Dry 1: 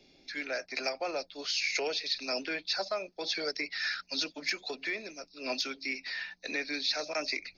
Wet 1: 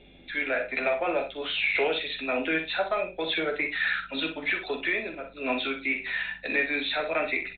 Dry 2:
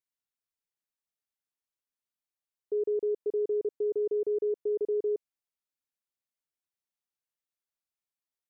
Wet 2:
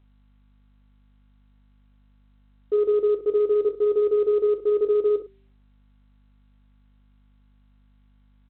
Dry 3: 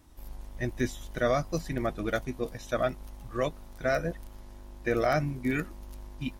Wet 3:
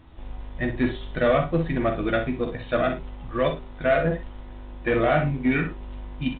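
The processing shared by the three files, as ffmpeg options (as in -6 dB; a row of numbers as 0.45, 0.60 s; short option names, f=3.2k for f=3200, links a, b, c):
-filter_complex "[0:a]bandreject=f=390.2:t=h:w=4,bandreject=f=780.4:t=h:w=4,asoftclip=type=tanh:threshold=-22dB,aecho=1:1:12|62:0.447|0.355,aeval=exprs='val(0)+0.000562*(sin(2*PI*50*n/s)+sin(2*PI*2*50*n/s)/2+sin(2*PI*3*50*n/s)/3+sin(2*PI*4*50*n/s)/4+sin(2*PI*5*50*n/s)/5)':c=same,asplit=2[a][b];[b]adelay=44,volume=-9dB[c];[a][c]amix=inputs=2:normalize=0,volume=7dB" -ar 8000 -c:a pcm_alaw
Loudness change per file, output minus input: +5.5, +8.5, +6.5 LU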